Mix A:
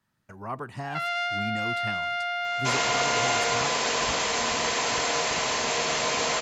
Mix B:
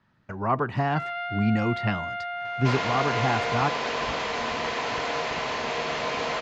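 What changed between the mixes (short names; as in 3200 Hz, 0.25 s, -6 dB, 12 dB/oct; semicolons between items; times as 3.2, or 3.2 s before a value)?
speech +10.5 dB; first sound: add air absorption 280 m; master: add air absorption 210 m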